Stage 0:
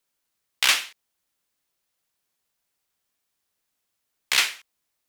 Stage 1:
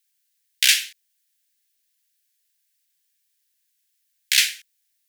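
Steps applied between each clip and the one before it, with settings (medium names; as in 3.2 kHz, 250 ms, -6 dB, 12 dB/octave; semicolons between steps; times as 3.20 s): elliptic high-pass 1.6 kHz, stop band 40 dB; tilt EQ +2.5 dB/octave; trim -1 dB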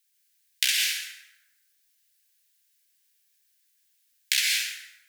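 compression 6:1, threshold -21 dBFS, peak gain reduction 10 dB; plate-style reverb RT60 1.1 s, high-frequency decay 0.6×, pre-delay 105 ms, DRR -1.5 dB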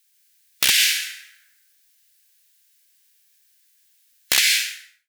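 fade out at the end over 0.66 s; integer overflow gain 12.5 dB; harmonic-percussive split harmonic +4 dB; trim +5.5 dB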